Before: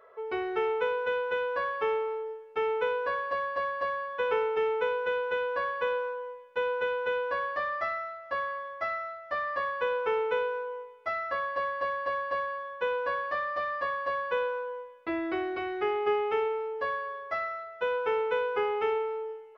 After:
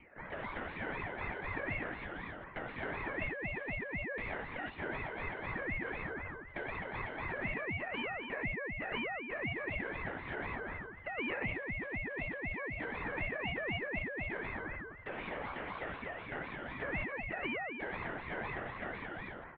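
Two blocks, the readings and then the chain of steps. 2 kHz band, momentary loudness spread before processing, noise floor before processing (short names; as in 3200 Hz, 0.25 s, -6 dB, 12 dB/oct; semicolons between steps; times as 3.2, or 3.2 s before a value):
-4.0 dB, 7 LU, -47 dBFS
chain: rattling part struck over -48 dBFS, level -32 dBFS; LPF 1400 Hz 12 dB/oct; resonant low shelf 760 Hz -8.5 dB, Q 3; compressor 6:1, threshold -36 dBFS, peak gain reduction 10 dB; loudspeakers at several distances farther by 41 m -2 dB, 72 m -5 dB; LPC vocoder at 8 kHz whisper; ring modulator with a swept carrier 810 Hz, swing 35%, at 4 Hz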